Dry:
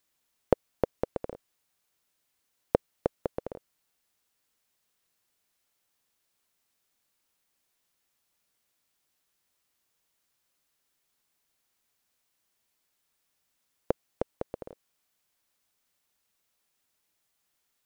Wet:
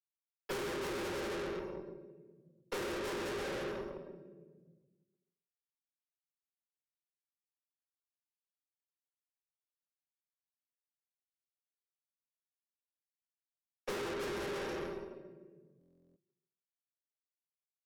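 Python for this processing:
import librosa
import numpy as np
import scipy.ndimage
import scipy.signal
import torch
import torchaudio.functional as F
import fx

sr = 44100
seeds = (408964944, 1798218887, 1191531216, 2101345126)

y = fx.octave_mirror(x, sr, pivot_hz=490.0)
y = np.sign(y) * np.maximum(np.abs(y) - 10.0 ** (-59.0 / 20.0), 0.0)
y = scipy.signal.sosfilt(scipy.signal.butter(2, 360.0, 'highpass', fs=sr, output='sos'), y)
y = fx.high_shelf(y, sr, hz=4300.0, db=-9.0)
y = y + 0.96 * np.pad(y, (int(5.2 * sr / 1000.0), 0))[:len(y)]
y = y + 10.0 ** (-8.5 / 20.0) * np.pad(y, (int(137 * sr / 1000.0), 0))[:len(y)]
y = fx.room_shoebox(y, sr, seeds[0], volume_m3=350.0, walls='mixed', distance_m=4.1)
y = fx.tube_stage(y, sr, drive_db=45.0, bias=0.7)
y = fx.peak_eq(y, sr, hz=710.0, db=-9.5, octaves=0.53)
y = fx.buffer_glitch(y, sr, at_s=(15.79,), block=1024, repeats=15)
y = fx.band_squash(y, sr, depth_pct=70)
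y = y * 10.0 ** (9.0 / 20.0)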